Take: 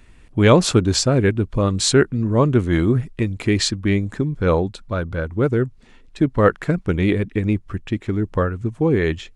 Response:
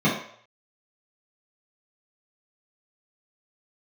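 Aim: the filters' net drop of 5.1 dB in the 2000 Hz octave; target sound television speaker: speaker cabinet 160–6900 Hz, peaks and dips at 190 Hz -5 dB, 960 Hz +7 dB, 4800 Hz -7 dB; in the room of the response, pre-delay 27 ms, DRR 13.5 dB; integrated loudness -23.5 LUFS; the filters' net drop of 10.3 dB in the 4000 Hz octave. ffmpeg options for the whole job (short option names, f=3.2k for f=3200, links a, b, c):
-filter_complex "[0:a]equalizer=f=2k:t=o:g=-5.5,equalizer=f=4k:t=o:g=-7.5,asplit=2[a][b];[1:a]atrim=start_sample=2205,adelay=27[c];[b][c]afir=irnorm=-1:irlink=0,volume=-30.5dB[d];[a][d]amix=inputs=2:normalize=0,highpass=f=160:w=0.5412,highpass=f=160:w=1.3066,equalizer=f=190:t=q:w=4:g=-5,equalizer=f=960:t=q:w=4:g=7,equalizer=f=4.8k:t=q:w=4:g=-7,lowpass=f=6.9k:w=0.5412,lowpass=f=6.9k:w=1.3066,volume=-2.5dB"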